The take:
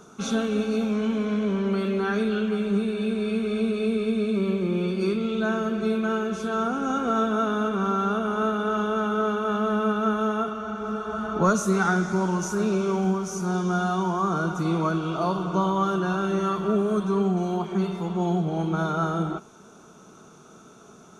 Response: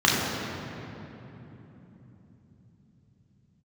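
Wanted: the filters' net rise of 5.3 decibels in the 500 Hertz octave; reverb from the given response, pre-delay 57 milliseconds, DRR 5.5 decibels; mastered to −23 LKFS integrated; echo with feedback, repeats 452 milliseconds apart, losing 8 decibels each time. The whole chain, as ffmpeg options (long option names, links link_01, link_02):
-filter_complex "[0:a]equalizer=frequency=500:width_type=o:gain=7,aecho=1:1:452|904|1356|1808|2260:0.398|0.159|0.0637|0.0255|0.0102,asplit=2[link_01][link_02];[1:a]atrim=start_sample=2205,adelay=57[link_03];[link_02][link_03]afir=irnorm=-1:irlink=0,volume=-25.5dB[link_04];[link_01][link_04]amix=inputs=2:normalize=0,volume=-3.5dB"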